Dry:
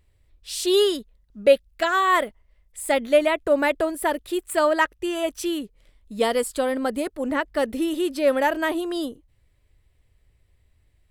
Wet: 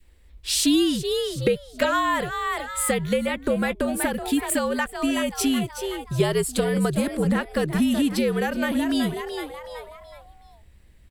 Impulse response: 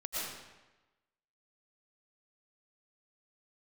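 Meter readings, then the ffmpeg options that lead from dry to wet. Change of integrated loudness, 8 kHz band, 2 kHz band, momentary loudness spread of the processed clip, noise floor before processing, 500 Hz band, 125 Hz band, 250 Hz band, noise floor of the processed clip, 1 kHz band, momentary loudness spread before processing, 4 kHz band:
-1.0 dB, +6.0 dB, -1.5 dB, 9 LU, -64 dBFS, -3.5 dB, n/a, +4.5 dB, -52 dBFS, -3.0 dB, 10 LU, +1.5 dB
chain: -filter_complex "[0:a]asplit=5[a][b][c][d][e];[b]adelay=374,afreqshift=120,volume=-12dB[f];[c]adelay=748,afreqshift=240,volume=-20.2dB[g];[d]adelay=1122,afreqshift=360,volume=-28.4dB[h];[e]adelay=1496,afreqshift=480,volume=-36.5dB[i];[a][f][g][h][i]amix=inputs=5:normalize=0,acrossover=split=210[j][k];[k]acompressor=threshold=-28dB:ratio=6[l];[j][l]amix=inputs=2:normalize=0,afreqshift=-74,adynamicequalizer=threshold=0.00631:dfrequency=750:dqfactor=0.77:tfrequency=750:tqfactor=0.77:attack=5:release=100:ratio=0.375:range=3:mode=cutabove:tftype=bell,volume=9dB"

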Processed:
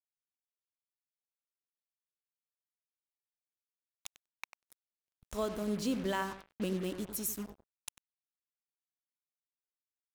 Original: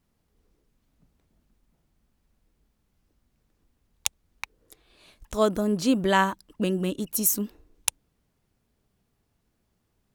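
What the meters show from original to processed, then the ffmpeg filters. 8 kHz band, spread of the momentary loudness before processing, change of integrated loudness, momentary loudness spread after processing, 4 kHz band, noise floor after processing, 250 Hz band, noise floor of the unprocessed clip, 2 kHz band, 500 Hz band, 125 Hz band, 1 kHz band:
-14.0 dB, 16 LU, -10.5 dB, 17 LU, -12.0 dB, under -85 dBFS, -10.5 dB, -74 dBFS, -13.0 dB, -10.5 dB, -10.0 dB, -13.5 dB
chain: -filter_complex "[0:a]alimiter=limit=-15.5dB:level=0:latency=1:release=452,aeval=exprs='val(0)+0.00282*(sin(2*PI*50*n/s)+sin(2*PI*2*50*n/s)/2+sin(2*PI*3*50*n/s)/3+sin(2*PI*4*50*n/s)/4+sin(2*PI*5*50*n/s)/5)':c=same,asplit=2[a][b];[b]adelay=96,lowpass=f=2k:p=1,volume=-10.5dB,asplit=2[c][d];[d]adelay=96,lowpass=f=2k:p=1,volume=0.45,asplit=2[e][f];[f]adelay=96,lowpass=f=2k:p=1,volume=0.45,asplit=2[g][h];[h]adelay=96,lowpass=f=2k:p=1,volume=0.45,asplit=2[i][j];[j]adelay=96,lowpass=f=2k:p=1,volume=0.45[k];[c][e][g][i][k]amix=inputs=5:normalize=0[l];[a][l]amix=inputs=2:normalize=0,acrusher=bits=5:mix=0:aa=0.5,volume=-8.5dB"

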